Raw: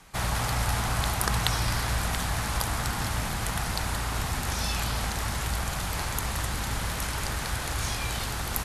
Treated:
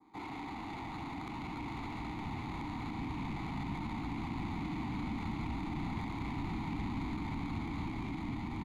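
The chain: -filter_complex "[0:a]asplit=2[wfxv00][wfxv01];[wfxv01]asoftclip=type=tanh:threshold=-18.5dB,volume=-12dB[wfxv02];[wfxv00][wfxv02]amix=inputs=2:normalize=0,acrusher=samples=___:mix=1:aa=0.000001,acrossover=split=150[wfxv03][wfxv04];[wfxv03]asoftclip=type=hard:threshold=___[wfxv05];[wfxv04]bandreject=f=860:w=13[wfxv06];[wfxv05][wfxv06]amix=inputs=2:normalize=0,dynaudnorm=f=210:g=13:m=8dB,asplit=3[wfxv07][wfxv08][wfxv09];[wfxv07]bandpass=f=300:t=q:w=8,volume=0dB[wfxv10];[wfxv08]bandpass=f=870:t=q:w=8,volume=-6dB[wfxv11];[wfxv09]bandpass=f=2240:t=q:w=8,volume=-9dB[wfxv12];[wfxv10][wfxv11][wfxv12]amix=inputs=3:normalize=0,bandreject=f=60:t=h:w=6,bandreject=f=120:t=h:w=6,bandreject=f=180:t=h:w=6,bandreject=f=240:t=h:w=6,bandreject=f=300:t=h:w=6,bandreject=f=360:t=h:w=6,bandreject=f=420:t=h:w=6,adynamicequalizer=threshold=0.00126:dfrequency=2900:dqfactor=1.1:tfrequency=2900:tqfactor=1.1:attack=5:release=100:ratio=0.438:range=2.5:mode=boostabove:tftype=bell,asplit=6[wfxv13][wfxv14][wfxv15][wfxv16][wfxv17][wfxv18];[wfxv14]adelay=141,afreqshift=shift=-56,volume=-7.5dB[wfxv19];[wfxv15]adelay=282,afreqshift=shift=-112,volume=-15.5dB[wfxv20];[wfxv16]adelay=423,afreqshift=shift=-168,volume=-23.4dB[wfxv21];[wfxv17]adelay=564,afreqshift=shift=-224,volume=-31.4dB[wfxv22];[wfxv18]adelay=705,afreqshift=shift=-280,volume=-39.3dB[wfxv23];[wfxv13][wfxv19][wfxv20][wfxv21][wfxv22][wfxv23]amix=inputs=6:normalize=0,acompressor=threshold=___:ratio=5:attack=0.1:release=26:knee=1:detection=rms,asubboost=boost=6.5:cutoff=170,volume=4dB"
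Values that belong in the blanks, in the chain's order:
16, -30dB, -41dB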